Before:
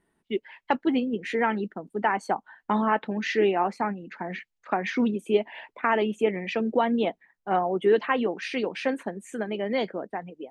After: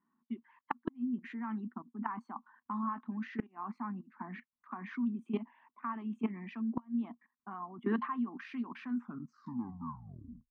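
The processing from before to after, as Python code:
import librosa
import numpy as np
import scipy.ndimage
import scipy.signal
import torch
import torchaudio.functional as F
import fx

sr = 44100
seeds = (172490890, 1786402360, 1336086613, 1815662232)

y = fx.tape_stop_end(x, sr, length_s=1.71)
y = fx.level_steps(y, sr, step_db=20)
y = fx.double_bandpass(y, sr, hz=510.0, octaves=2.2)
y = fx.gate_flip(y, sr, shuts_db=-31.0, range_db=-26)
y = y * librosa.db_to_amplitude(10.5)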